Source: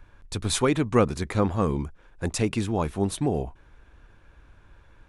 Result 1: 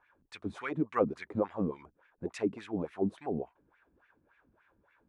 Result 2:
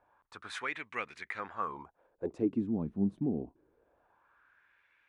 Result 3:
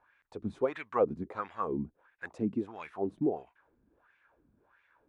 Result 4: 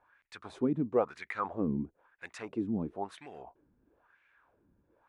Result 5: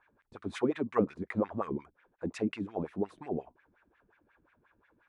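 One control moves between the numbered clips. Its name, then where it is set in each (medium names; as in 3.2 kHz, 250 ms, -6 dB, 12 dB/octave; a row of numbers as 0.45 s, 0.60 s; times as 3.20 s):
wah-wah, rate: 3.5 Hz, 0.25 Hz, 1.5 Hz, 1 Hz, 5.6 Hz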